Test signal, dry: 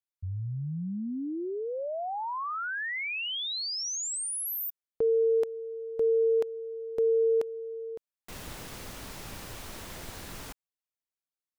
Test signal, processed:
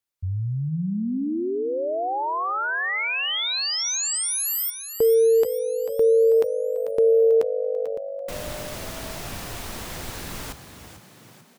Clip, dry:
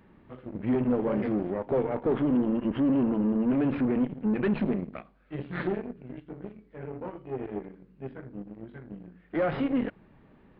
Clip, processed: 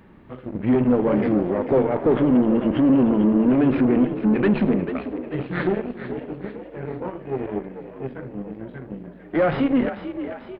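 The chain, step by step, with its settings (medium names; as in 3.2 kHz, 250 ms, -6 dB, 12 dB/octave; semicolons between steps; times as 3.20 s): frequency-shifting echo 442 ms, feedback 53%, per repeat +50 Hz, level -11 dB; trim +7.5 dB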